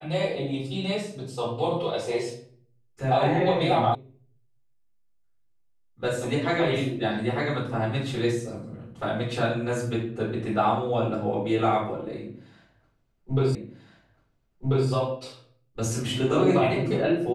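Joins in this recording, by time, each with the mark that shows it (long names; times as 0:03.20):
0:03.95: cut off before it has died away
0:13.55: the same again, the last 1.34 s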